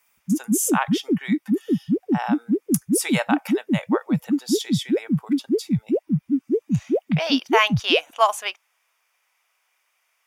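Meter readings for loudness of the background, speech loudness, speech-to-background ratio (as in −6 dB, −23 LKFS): −24.0 LKFS, −25.5 LKFS, −1.5 dB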